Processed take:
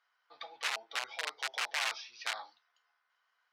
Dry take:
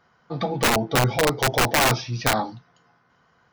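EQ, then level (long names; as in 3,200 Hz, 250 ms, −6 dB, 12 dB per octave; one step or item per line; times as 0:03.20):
band-pass filter 650–3,100 Hz
first difference
0.0 dB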